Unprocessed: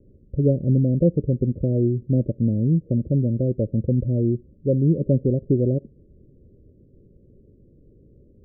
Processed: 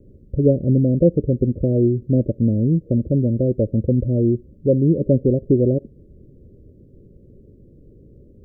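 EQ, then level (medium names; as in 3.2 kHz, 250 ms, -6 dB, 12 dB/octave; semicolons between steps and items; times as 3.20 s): dynamic bell 150 Hz, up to -5 dB, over -32 dBFS, Q 1.4; +5.5 dB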